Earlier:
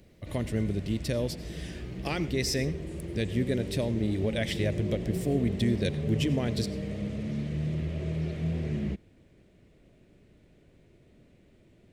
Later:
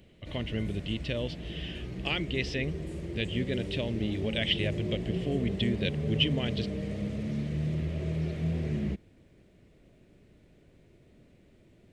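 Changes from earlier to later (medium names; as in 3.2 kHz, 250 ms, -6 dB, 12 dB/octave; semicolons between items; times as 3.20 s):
speech: add resonant low-pass 3 kHz, resonance Q 6.2; reverb: off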